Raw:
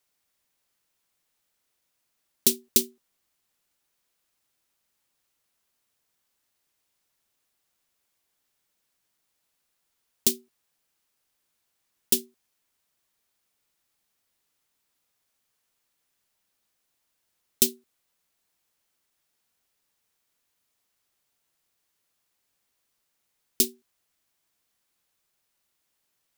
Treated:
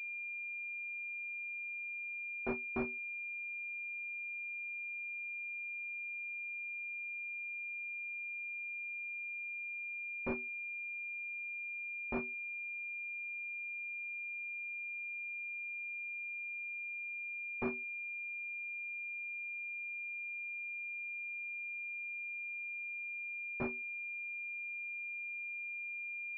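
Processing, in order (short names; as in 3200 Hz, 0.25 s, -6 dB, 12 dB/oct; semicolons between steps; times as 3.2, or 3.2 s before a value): reverse; compressor 8:1, threshold -31 dBFS, peak gain reduction 17 dB; reverse; pulse-width modulation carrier 2400 Hz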